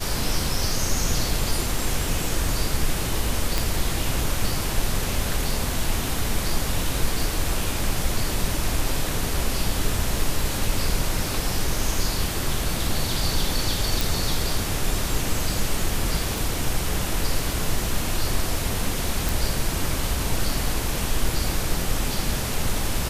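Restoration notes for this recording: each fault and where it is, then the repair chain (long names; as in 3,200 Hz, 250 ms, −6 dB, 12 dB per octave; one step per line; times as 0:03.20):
0:03.58: click
0:14.01: click
0:16.38: click
0:19.29: click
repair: click removal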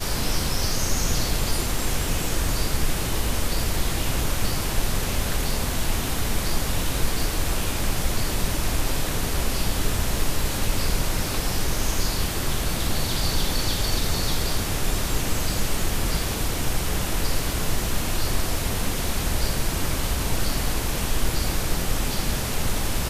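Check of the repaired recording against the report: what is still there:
none of them is left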